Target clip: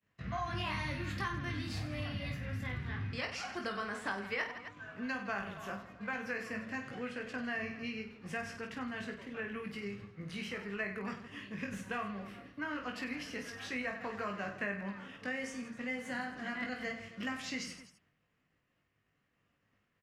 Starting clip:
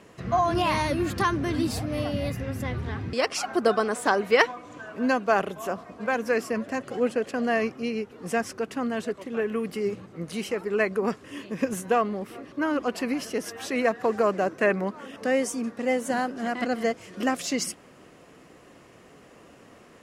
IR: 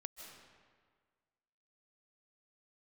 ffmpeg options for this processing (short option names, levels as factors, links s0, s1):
-filter_complex "[0:a]agate=range=0.0224:threshold=0.0112:ratio=3:detection=peak,firequalizer=gain_entry='entry(110,0);entry(360,-14);entry(1800,-1);entry(8700,-16)':delay=0.05:min_phase=1,asplit=2[s0][s1];[s1]aecho=0:1:20|50|95|162.5|263.8:0.631|0.398|0.251|0.158|0.1[s2];[s0][s2]amix=inputs=2:normalize=0,acrossover=split=120|1100|7200[s3][s4][s5][s6];[s3]acompressor=threshold=0.01:ratio=4[s7];[s4]acompressor=threshold=0.0158:ratio=4[s8];[s5]acompressor=threshold=0.0178:ratio=4[s9];[s6]acompressor=threshold=0.00158:ratio=4[s10];[s7][s8][s9][s10]amix=inputs=4:normalize=0,volume=0.668"